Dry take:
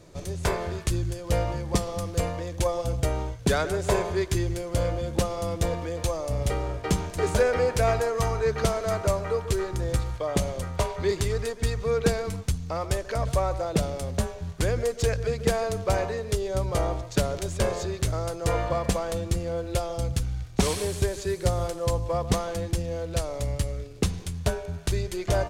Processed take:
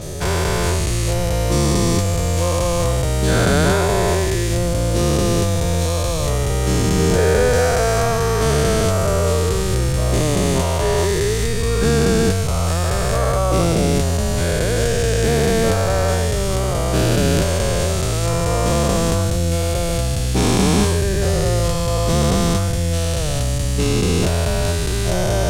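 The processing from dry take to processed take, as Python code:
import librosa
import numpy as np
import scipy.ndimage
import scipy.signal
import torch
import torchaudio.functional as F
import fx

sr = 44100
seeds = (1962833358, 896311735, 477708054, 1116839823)

y = fx.spec_dilate(x, sr, span_ms=480)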